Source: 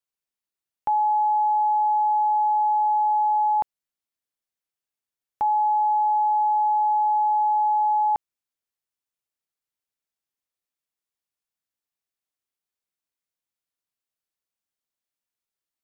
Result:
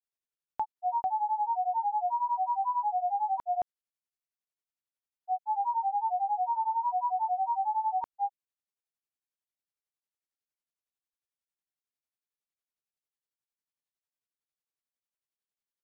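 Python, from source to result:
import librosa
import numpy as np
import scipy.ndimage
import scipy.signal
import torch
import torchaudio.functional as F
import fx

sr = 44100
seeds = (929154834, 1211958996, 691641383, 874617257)

y = fx.granulator(x, sr, seeds[0], grain_ms=115.0, per_s=11.0, spray_ms=312.0, spread_st=3)
y = y * 10.0 ** (-5.5 / 20.0)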